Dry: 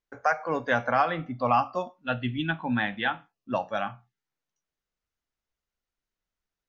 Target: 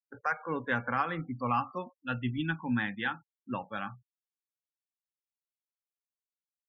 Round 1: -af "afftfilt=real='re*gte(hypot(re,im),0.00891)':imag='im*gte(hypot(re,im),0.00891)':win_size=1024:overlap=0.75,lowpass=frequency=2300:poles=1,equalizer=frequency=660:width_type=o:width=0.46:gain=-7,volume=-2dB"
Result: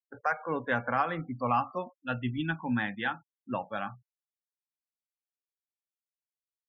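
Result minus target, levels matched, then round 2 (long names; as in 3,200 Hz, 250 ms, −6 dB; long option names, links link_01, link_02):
500 Hz band +2.5 dB
-af "afftfilt=real='re*gte(hypot(re,im),0.00891)':imag='im*gte(hypot(re,im),0.00891)':win_size=1024:overlap=0.75,lowpass=frequency=2300:poles=1,equalizer=frequency=660:width_type=o:width=0.46:gain=-16.5,volume=-2dB"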